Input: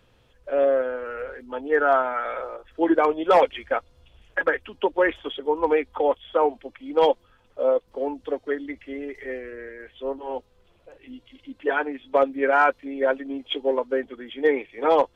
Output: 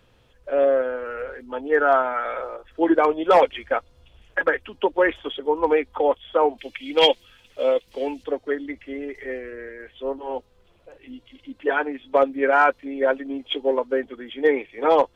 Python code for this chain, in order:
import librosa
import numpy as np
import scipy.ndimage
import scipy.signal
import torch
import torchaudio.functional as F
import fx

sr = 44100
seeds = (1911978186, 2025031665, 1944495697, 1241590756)

y = fx.high_shelf_res(x, sr, hz=1700.0, db=11.5, q=1.5, at=(6.58, 8.24))
y = y * 10.0 ** (1.5 / 20.0)